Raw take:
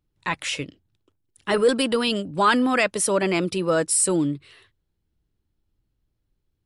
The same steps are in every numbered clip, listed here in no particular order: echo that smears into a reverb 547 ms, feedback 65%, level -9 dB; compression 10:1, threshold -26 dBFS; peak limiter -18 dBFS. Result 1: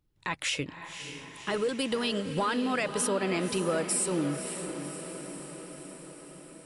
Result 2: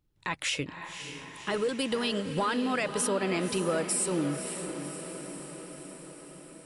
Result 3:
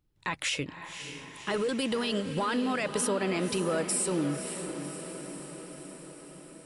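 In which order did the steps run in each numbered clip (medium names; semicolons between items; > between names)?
compression > peak limiter > echo that smears into a reverb; compression > echo that smears into a reverb > peak limiter; peak limiter > compression > echo that smears into a reverb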